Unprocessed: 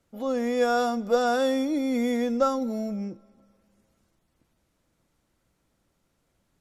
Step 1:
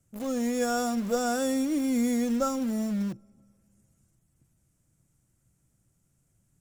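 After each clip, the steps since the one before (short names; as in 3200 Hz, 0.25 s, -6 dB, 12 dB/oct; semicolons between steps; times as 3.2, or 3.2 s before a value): graphic EQ 125/250/500/1000/2000/4000/8000 Hz +10/-3/-7/-8/-4/-12/+10 dB; in parallel at -8 dB: requantised 6-bit, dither none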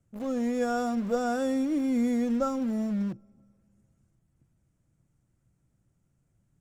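LPF 2100 Hz 6 dB/oct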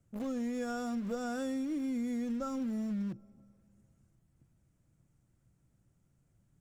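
dynamic EQ 680 Hz, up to -6 dB, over -42 dBFS, Q 0.92; compressor, threshold -33 dBFS, peak gain reduction 8.5 dB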